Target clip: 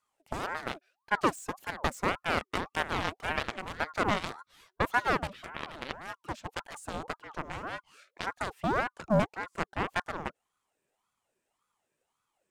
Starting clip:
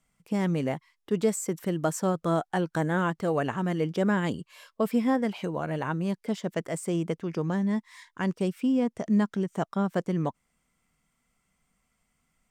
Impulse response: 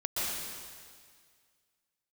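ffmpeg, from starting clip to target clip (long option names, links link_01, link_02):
-af "aeval=exprs='0.237*(cos(1*acos(clip(val(0)/0.237,-1,1)))-cos(1*PI/2))+0.0531*(cos(7*acos(clip(val(0)/0.237,-1,1)))-cos(7*PI/2))':channel_layout=same,aeval=exprs='val(0)*sin(2*PI*810*n/s+810*0.55/1.8*sin(2*PI*1.8*n/s))':channel_layout=same"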